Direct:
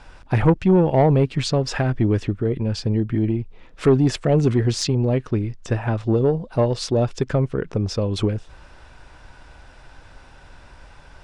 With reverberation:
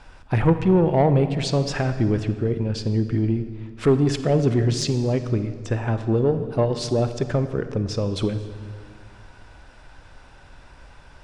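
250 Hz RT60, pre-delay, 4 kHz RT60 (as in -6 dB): 2.4 s, 33 ms, 1.5 s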